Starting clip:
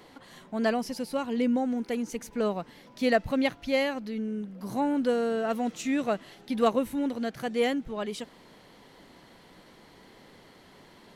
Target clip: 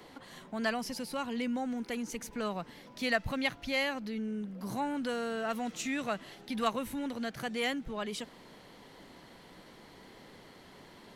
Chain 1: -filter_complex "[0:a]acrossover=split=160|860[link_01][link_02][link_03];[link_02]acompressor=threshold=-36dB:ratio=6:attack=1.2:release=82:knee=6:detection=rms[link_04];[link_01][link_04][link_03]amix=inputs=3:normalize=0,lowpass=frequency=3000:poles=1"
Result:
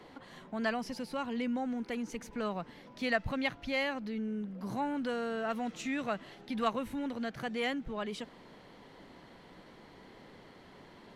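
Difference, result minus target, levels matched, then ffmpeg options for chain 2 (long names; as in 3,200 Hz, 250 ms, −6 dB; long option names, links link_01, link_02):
4,000 Hz band −3.0 dB
-filter_complex "[0:a]acrossover=split=160|860[link_01][link_02][link_03];[link_02]acompressor=threshold=-36dB:ratio=6:attack=1.2:release=82:knee=6:detection=rms[link_04];[link_01][link_04][link_03]amix=inputs=3:normalize=0"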